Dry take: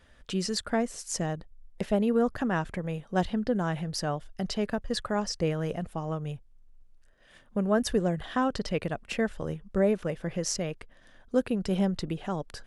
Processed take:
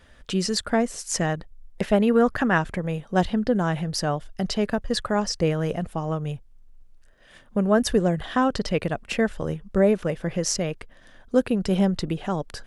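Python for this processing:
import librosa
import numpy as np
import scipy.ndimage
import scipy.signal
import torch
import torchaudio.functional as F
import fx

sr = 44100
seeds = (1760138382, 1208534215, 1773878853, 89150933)

y = fx.dynamic_eq(x, sr, hz=1800.0, q=0.8, threshold_db=-46.0, ratio=4.0, max_db=6, at=(1.01, 2.58))
y = y * 10.0 ** (5.5 / 20.0)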